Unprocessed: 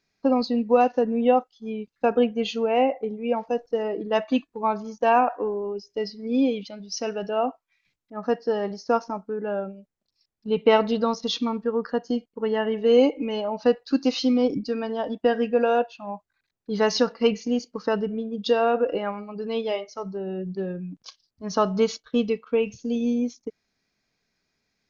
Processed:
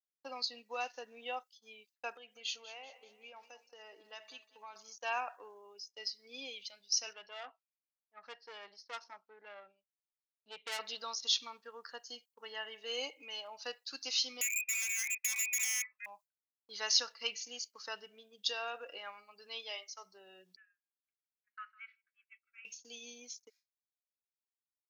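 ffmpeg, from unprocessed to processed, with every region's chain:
-filter_complex "[0:a]asettb=1/sr,asplit=3[s0][s1][s2];[s0]atrim=end=2.164[s3];[s1]atrim=start=2.16:end=4.76,asetpts=PTS-STARTPTS,afade=t=in:d=0.004:c=qsin,afade=t=out:st=2.596:d=0.004:c=qsin,acompressor=threshold=0.0355:ratio=4:attack=3.2:release=140:knee=1:detection=peak,aecho=1:1:192|384|576|768:0.178|0.0854|0.041|0.0197,atrim=end_sample=114660[s4];[s2]atrim=start=4.756[s5];[s3][s4]acrossfade=d=0.004:c1=hsin:c2=qsin[s6];[s6][s5]acrossfade=d=0.004:c1=qsin:c2=hsin,asettb=1/sr,asplit=3[s7][s8][s9];[s7]atrim=end=7.134[s10];[s8]atrim=start=7.13:end=10.79,asetpts=PTS-STARTPTS,afade=t=in:d=0.004:c=qsin,afade=t=out:st=3.656:d=0.004:c=qsin,lowpass=f=4200:w=0.5412,lowpass=f=4200:w=1.3066,aeval=exprs='(tanh(10*val(0)+0.55)-tanh(0.55))/10':c=same[s11];[s9]atrim=start=10.786[s12];[s10][s11]acrossfade=d=0.004:c1=hsin:c2=qsin[s13];[s13][s12]acrossfade=d=0.004:c1=qsin:c2=hsin,asettb=1/sr,asplit=3[s14][s15][s16];[s14]atrim=end=14.414[s17];[s15]atrim=start=14.41:end=16.06,asetpts=PTS-STARTPTS,afade=t=in:d=0.004:c=qsin,afade=t=out:st=1.646:d=0.004:c=qsin,lowpass=f=2300:t=q:w=0.5098,lowpass=f=2300:t=q:w=0.6013,lowpass=f=2300:t=q:w=0.9,lowpass=f=2300:t=q:w=2.563,afreqshift=-2700,acompressor=threshold=0.0794:ratio=10:attack=3.2:release=140:knee=1:detection=peak,aeval=exprs='0.0473*(abs(mod(val(0)/0.0473+3,4)-2)-1)':c=same[s18];[s16]atrim=start=16.056[s19];[s17][s18]acrossfade=d=0.004:c1=hsin:c2=qsin[s20];[s20][s19]acrossfade=d=0.004:c1=qsin:c2=hsin,asettb=1/sr,asplit=3[s21][s22][s23];[s21]atrim=end=20.564[s24];[s22]atrim=start=20.56:end=22.65,asetpts=PTS-STARTPTS,afade=t=in:d=0.004:c=qsin,afade=t=out:st=2.086:d=0.004:c=qsin,asuperpass=centerf=1800:order=8:qfactor=1.7,aecho=1:1:157:0.2,atrim=end_sample=92169[s25];[s23]atrim=start=22.646[s26];[s24][s25]acrossfade=d=0.004:c1=hsin:c2=qsin[s27];[s27][s26]acrossfade=d=0.004:c1=qsin:c2=hsin,agate=range=0.0224:threshold=0.0112:ratio=3:detection=peak,highpass=f=880:p=1,aderivative,volume=1.5"

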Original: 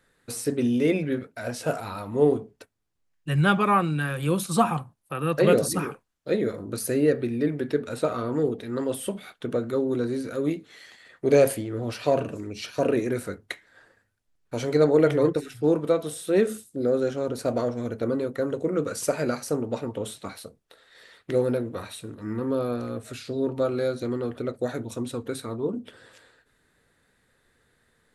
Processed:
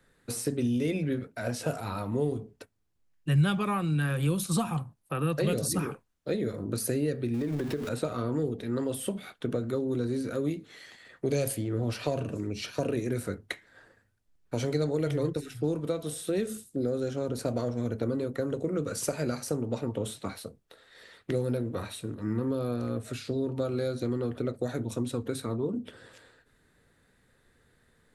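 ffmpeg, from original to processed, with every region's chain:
-filter_complex "[0:a]asettb=1/sr,asplit=3[s0][s1][s2];[s0]atrim=end=7.344[s3];[s1]atrim=start=7.34:end=7.89,asetpts=PTS-STARTPTS,afade=t=in:d=0.004:c=qsin,afade=t=out:st=0.546:d=0.004:c=qsin,aeval=exprs='val(0)+0.5*0.0178*sgn(val(0))':c=same,acompressor=threshold=0.0447:ratio=4:attack=3.2:release=140:knee=1:detection=peak[s4];[s2]atrim=start=7.886[s5];[s3][s4]acrossfade=d=0.004:c1=hsin:c2=qsin[s6];[s6][s5]acrossfade=d=0.004:c1=qsin:c2=hsin,lowshelf=f=370:g=5.5,acrossover=split=130|3000[s7][s8][s9];[s8]acompressor=threshold=0.0501:ratio=6[s10];[s7][s10][s9]amix=inputs=3:normalize=0,volume=0.841"

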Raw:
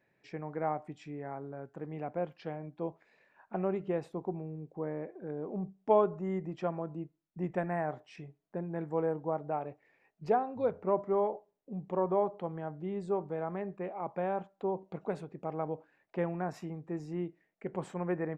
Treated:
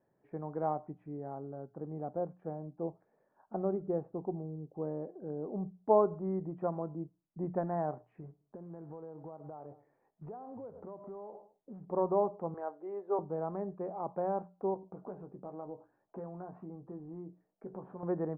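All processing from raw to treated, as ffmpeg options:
-filter_complex "[0:a]asettb=1/sr,asplit=3[s0][s1][s2];[s0]atrim=end=1.174[s3];[s1]atrim=start=1.17:end=5.54,asetpts=PTS-STARTPTS,afade=t=in:d=0.004:c=qsin,afade=t=out:st=4.366:d=0.004:c=qsin,highshelf=f=2000:g=-10,bandreject=f=1000:w=12[s4];[s2]atrim=start=5.536[s5];[s3][s4]acrossfade=d=0.004:c1=hsin:c2=qsin[s6];[s6][s5]acrossfade=d=0.004:c1=qsin:c2=hsin,asettb=1/sr,asplit=3[s7][s8][s9];[s7]atrim=end=8.204[s10];[s8]atrim=start=8.2:end=11.85,asetpts=PTS-STARTPTS,afade=t=in:d=0.004:c=qsin,afade=t=out:st=3.646:d=0.004:c=qsin,aecho=1:1:104|208:0.0631|0.0189,atrim=end_sample=160965,acompressor=threshold=0.00794:ratio=10:attack=3.2:release=140:knee=1:detection=peak,acrusher=bits=5:mode=log:mix=0:aa=0.000001[s11];[s9]atrim=start=11.846[s12];[s10][s11]acrossfade=d=0.004:c1=hsin:c2=qsin[s13];[s13][s12]acrossfade=d=0.004:c1=qsin:c2=hsin,asettb=1/sr,asplit=3[s14][s15][s16];[s14]atrim=end=12.544[s17];[s15]atrim=start=12.54:end=13.19,asetpts=PTS-STARTPTS,afade=t=in:d=0.004:c=qsin,afade=t=out:st=0.646:d=0.004:c=qsin,highpass=f=360:w=0.5412,highpass=f=360:w=1.3066,equalizer=f=2200:t=o:w=2.4:g=6.5[s18];[s16]atrim=start=13.186[s19];[s17][s18]acrossfade=d=0.004:c1=hsin:c2=qsin[s20];[s20][s19]acrossfade=d=0.004:c1=qsin:c2=hsin,asettb=1/sr,asplit=3[s21][s22][s23];[s21]atrim=end=14.744[s24];[s22]atrim=start=14.74:end=18.03,asetpts=PTS-STARTPTS,afade=t=in:d=0.004:c=qsin,afade=t=out:st=3.286:d=0.004:c=qsin,equalizer=f=2000:t=o:w=0.23:g=-7,acompressor=threshold=0.00708:ratio=2.5:attack=3.2:release=140:knee=1:detection=peak,asplit=2[s25][s26];[s26]adelay=16,volume=0.447[s27];[s25][s27]amix=inputs=2:normalize=0,atrim=end_sample=145089[s28];[s23]atrim=start=18.026[s29];[s24][s28]acrossfade=d=0.004:c1=hsin:c2=qsin[s30];[s30][s29]acrossfade=d=0.004:c1=qsin:c2=hsin,lowpass=f=1200:w=0.5412,lowpass=f=1200:w=1.3066,bandreject=f=60:t=h:w=6,bandreject=f=120:t=h:w=6,bandreject=f=180:t=h:w=6"

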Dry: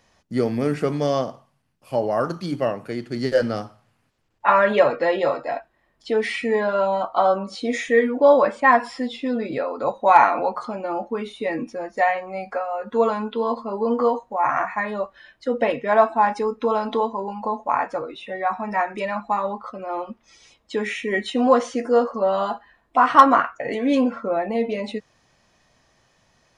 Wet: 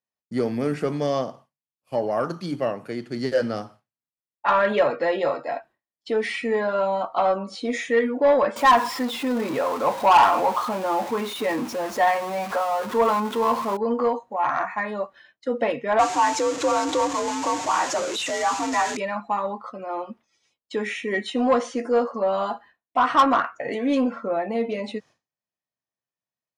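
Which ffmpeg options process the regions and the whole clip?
-filter_complex "[0:a]asettb=1/sr,asplit=3[s0][s1][s2];[s0]atrim=end=8.564[s3];[s1]atrim=start=8.56:end=13.77,asetpts=PTS-STARTPTS,afade=t=in:d=0.004:c=qsin,afade=t=out:st=5.206:d=0.004:c=qsin,aeval=exprs='val(0)+0.5*0.0376*sgn(val(0))':c=same,equalizer=f=1000:w=2.4:g=7.5[s4];[s2]atrim=start=13.766[s5];[s3][s4]acrossfade=d=0.004:c1=hsin:c2=qsin[s6];[s6][s5]acrossfade=d=0.004:c1=qsin:c2=hsin,asettb=1/sr,asplit=3[s7][s8][s9];[s7]atrim=end=15.994[s10];[s8]atrim=start=15.99:end=18.97,asetpts=PTS-STARTPTS,afade=t=in:d=0.004:c=qsin,afade=t=out:st=2.976:d=0.004:c=qsin,aeval=exprs='val(0)+0.5*0.0596*sgn(val(0))':c=same,lowpass=f=6900:t=q:w=4.2,afreqshift=59[s11];[s9]atrim=start=18.966[s12];[s10][s11]acrossfade=d=0.004:c1=hsin:c2=qsin[s13];[s13][s12]acrossfade=d=0.004:c1=qsin:c2=hsin,highpass=110,agate=range=0.0224:threshold=0.00891:ratio=3:detection=peak,acontrast=74,volume=0.376"

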